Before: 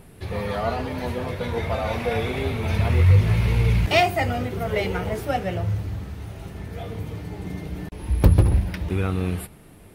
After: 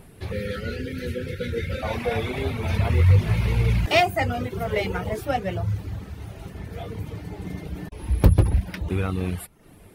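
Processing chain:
reverb reduction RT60 0.54 s
gain on a spectral selection 0:00.32–0:01.83, 580–1,300 Hz −29 dB

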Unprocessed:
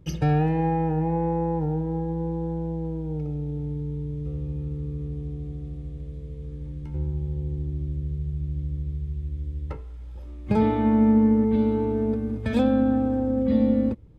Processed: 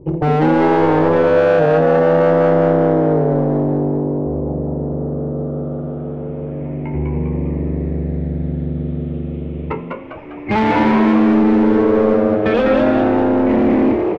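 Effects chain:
rippled gain that drifts along the octave scale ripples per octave 0.7, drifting −0.3 Hz, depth 11 dB
tilt shelving filter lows +4.5 dB, about 640 Hz
mains-hum notches 60/120/180/240/300 Hz
in parallel at −4.5 dB: soft clipping −20.5 dBFS, distortion −7 dB
on the sum: low-pass filter sweep 550 Hz → 2,200 Hz, 0:03.55–0:07.06
mid-hump overdrive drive 22 dB, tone 3,900 Hz, clips at −3.5 dBFS
hard clipping −10 dBFS, distortion −17 dB
high-frequency loss of the air 79 metres
on a send: echo with shifted repeats 200 ms, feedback 47%, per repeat +96 Hz, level −3.5 dB
on the sum: level −2 dB

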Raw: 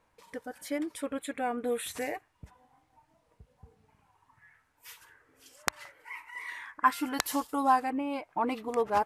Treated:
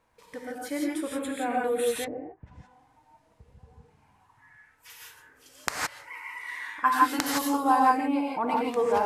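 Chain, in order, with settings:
reverb whose tail is shaped and stops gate 190 ms rising, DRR −2.5 dB
0:02.04–0:04.90: treble cut that deepens with the level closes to 410 Hz, closed at −31 dBFS

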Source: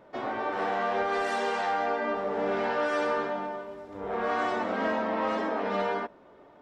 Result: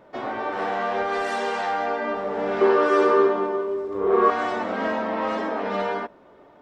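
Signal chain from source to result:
0:02.61–0:04.30: hollow resonant body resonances 390/1,100 Hz, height 18 dB, ringing for 50 ms
level +3 dB

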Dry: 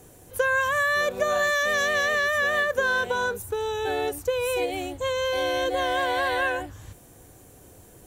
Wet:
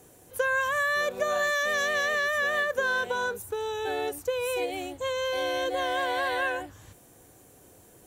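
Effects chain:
low-shelf EQ 99 Hz −10.5 dB
level −3 dB

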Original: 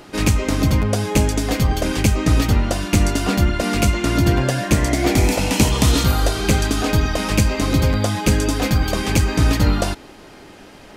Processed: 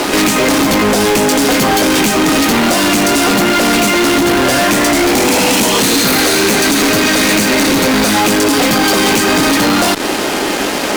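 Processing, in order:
0:05.80–0:08.14: lower of the sound and its delayed copy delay 0.48 ms
high-pass filter 220 Hz 24 dB per octave
downward compressor 6 to 1, threshold −28 dBFS, peak gain reduction 14.5 dB
fuzz pedal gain 45 dB, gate −46 dBFS
level +3.5 dB

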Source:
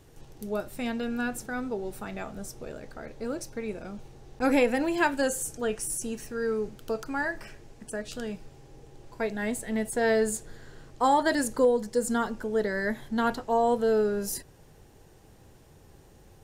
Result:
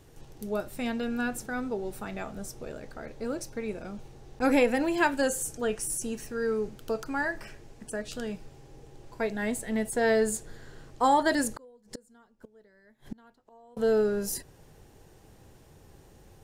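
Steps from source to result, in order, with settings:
0:11.56–0:13.77: gate with flip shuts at −26 dBFS, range −31 dB

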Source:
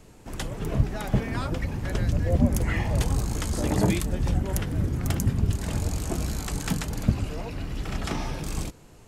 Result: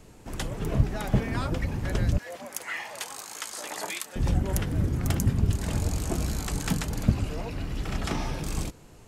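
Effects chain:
0:02.18–0:04.16: high-pass filter 970 Hz 12 dB per octave

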